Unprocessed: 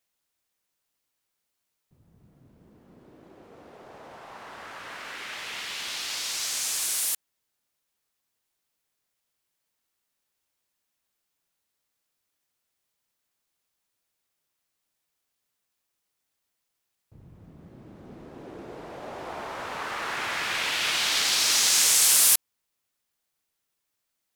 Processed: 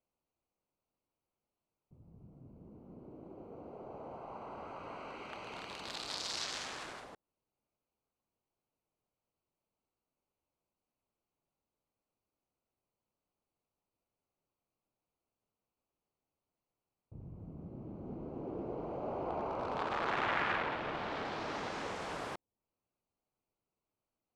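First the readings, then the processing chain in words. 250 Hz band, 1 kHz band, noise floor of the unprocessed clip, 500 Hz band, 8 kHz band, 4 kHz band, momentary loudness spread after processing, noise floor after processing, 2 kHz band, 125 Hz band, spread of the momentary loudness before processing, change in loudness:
+1.5 dB, -2.5 dB, -81 dBFS, +1.0 dB, -28.5 dB, -18.5 dB, 19 LU, under -85 dBFS, -10.0 dB, +2.0 dB, 23 LU, -17.0 dB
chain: Wiener smoothing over 25 samples; treble ducked by the level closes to 790 Hz, closed at -26 dBFS; Doppler distortion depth 0.16 ms; gain +2 dB

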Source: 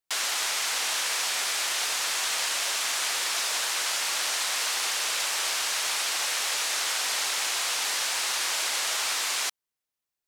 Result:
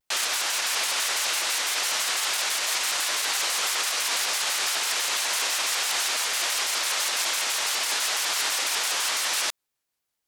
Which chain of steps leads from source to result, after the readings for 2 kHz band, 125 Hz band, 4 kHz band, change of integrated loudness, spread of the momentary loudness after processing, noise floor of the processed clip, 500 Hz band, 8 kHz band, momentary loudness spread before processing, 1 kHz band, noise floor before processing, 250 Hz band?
+2.0 dB, n/a, +2.0 dB, +2.0 dB, 0 LU, -82 dBFS, +2.5 dB, +2.0 dB, 0 LU, +2.0 dB, under -85 dBFS, +3.5 dB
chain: limiter -22.5 dBFS, peak gain reduction 7.5 dB; shaped vibrato square 6 Hz, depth 250 cents; gain +6 dB

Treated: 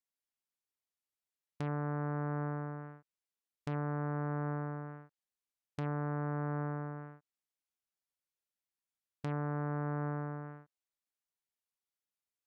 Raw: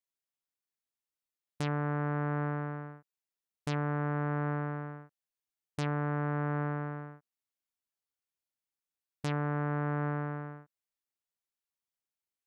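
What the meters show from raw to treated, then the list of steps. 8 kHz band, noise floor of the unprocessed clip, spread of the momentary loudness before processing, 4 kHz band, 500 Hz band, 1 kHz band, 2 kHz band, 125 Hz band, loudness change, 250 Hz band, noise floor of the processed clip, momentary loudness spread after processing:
n/a, under -85 dBFS, 12 LU, under -10 dB, -3.5 dB, -4.5 dB, -7.0 dB, -3.5 dB, -4.0 dB, -3.5 dB, under -85 dBFS, 12 LU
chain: treble ducked by the level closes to 1500 Hz, closed at -33.5 dBFS; gain -3.5 dB

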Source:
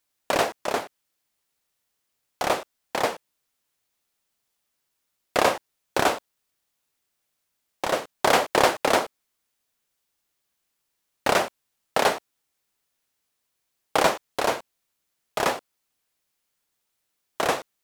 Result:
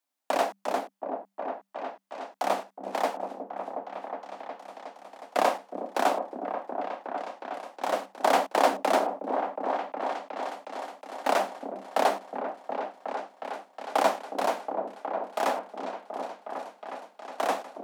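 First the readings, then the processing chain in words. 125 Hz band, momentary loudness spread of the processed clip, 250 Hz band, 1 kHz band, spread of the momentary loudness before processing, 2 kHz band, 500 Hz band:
under -10 dB, 13 LU, -2.0 dB, -0.5 dB, 13 LU, -6.5 dB, -1.5 dB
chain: rippled Chebyshev high-pass 190 Hz, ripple 9 dB; repeats that get brighter 0.364 s, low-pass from 400 Hz, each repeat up 1 oct, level -3 dB

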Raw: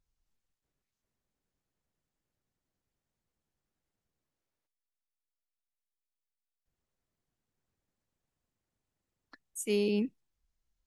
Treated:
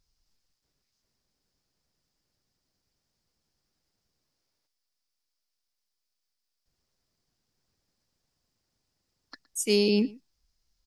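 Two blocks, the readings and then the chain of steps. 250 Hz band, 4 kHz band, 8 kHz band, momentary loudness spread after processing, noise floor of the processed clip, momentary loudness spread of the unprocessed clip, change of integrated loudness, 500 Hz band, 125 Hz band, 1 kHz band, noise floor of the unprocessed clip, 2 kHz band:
+5.5 dB, +12.0 dB, +8.0 dB, 11 LU, -83 dBFS, 11 LU, +6.5 dB, +5.5 dB, n/a, +5.5 dB, under -85 dBFS, +7.0 dB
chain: bell 5000 Hz +13.5 dB 0.58 oct; on a send: echo 0.116 s -22 dB; on the sum: gain +5.5 dB

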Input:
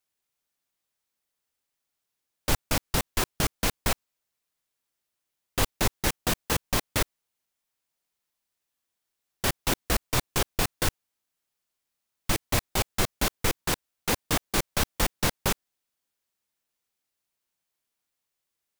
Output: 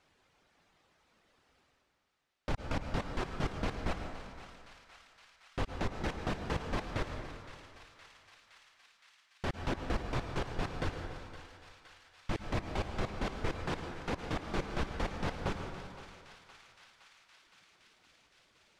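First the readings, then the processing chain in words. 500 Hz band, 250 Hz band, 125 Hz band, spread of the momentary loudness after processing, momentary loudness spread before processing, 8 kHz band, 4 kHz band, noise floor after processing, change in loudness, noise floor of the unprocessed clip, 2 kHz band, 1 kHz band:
-6.0 dB, -5.5 dB, -5.5 dB, 19 LU, 4 LU, -24.0 dB, -14.5 dB, -72 dBFS, -10.5 dB, -84 dBFS, -9.5 dB, -7.0 dB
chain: reverb removal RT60 1.6 s; limiter -20 dBFS, peak gain reduction 9.5 dB; reverse; upward compressor, threshold -39 dBFS; reverse; tape spacing loss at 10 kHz 27 dB; on a send: thinning echo 0.516 s, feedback 82%, high-pass 1100 Hz, level -12 dB; on the sum: plate-style reverb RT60 2 s, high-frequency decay 0.6×, pre-delay 90 ms, DRR 5 dB

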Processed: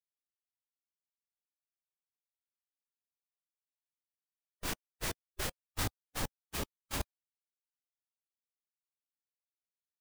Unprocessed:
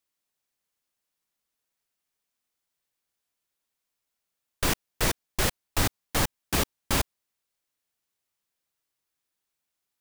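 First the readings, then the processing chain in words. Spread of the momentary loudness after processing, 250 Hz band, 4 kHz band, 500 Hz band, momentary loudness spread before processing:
3 LU, -12.5 dB, -11.5 dB, -12.0 dB, 1 LU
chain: expander -16 dBFS; harmonic-percussive split percussive -7 dB; harmonic tremolo 8 Hz, depth 50%, crossover 820 Hz; gain +4.5 dB

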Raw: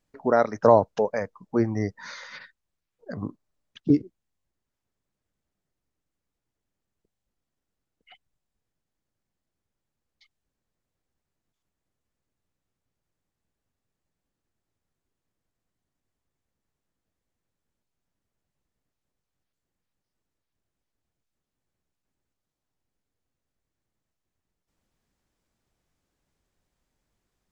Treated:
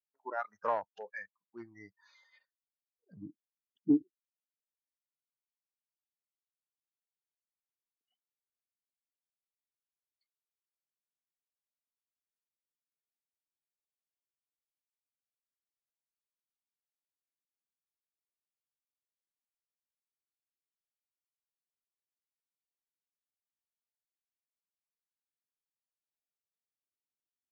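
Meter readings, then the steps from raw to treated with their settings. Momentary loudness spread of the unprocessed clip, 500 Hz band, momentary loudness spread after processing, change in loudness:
21 LU, -19.0 dB, 21 LU, -11.0 dB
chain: added harmonics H 3 -20 dB, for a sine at -2 dBFS; spectral noise reduction 23 dB; in parallel at -5.5 dB: hard clip -18.5 dBFS, distortion -6 dB; on the sum: LFO band-pass sine 0.21 Hz 310–1700 Hz; gain -4 dB

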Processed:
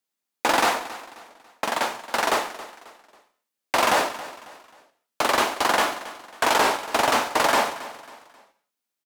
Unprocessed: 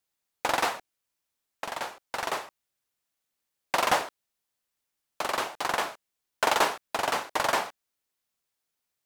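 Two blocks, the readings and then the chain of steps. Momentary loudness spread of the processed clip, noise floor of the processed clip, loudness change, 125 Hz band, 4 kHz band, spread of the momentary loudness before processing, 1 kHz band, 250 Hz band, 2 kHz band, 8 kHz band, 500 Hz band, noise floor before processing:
16 LU, -84 dBFS, +6.0 dB, +5.0 dB, +6.5 dB, 12 LU, +6.5 dB, +9.5 dB, +6.5 dB, +7.0 dB, +7.0 dB, -84 dBFS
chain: HPF 180 Hz 12 dB/oct; bell 240 Hz +5.5 dB 0.8 oct; in parallel at +2 dB: negative-ratio compressor -27 dBFS; on the sum: sample leveller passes 2; on a send: feedback echo 0.273 s, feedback 38%, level -16 dB; on the sum: non-linear reverb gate 0.23 s falling, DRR 10 dB; record warp 33 1/3 rpm, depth 100 cents; gain -6 dB

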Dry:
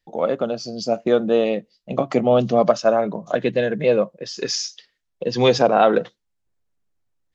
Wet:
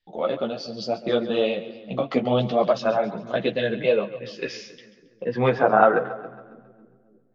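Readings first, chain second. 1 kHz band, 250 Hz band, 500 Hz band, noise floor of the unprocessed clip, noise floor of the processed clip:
-1.5 dB, -4.0 dB, -4.0 dB, -74 dBFS, -59 dBFS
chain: split-band echo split 350 Hz, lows 0.3 s, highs 0.137 s, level -14.5 dB; chorus voices 4, 1.1 Hz, delay 13 ms, depth 4 ms; low-pass sweep 3700 Hz -> 1500 Hz, 3.69–5.79; gain -1.5 dB

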